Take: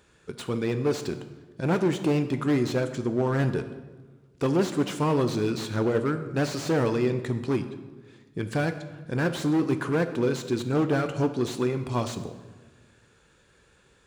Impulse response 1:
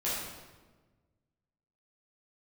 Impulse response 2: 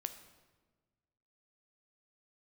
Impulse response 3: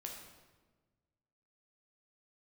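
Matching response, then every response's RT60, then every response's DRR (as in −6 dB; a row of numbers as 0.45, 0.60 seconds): 2; 1.3, 1.4, 1.3 seconds; −10.0, 8.5, −0.5 decibels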